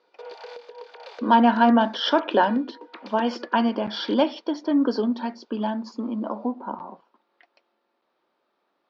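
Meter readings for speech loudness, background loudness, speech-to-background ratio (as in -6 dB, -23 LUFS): -23.0 LUFS, -43.0 LUFS, 20.0 dB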